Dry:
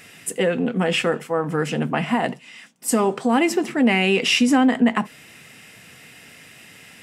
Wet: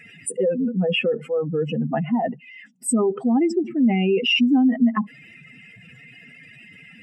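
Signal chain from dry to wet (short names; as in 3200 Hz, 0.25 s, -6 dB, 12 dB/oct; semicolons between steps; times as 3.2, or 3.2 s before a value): spectral contrast raised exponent 2.7; 3.57–4.09 dynamic EQ 1800 Hz, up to -8 dB, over -41 dBFS, Q 1.3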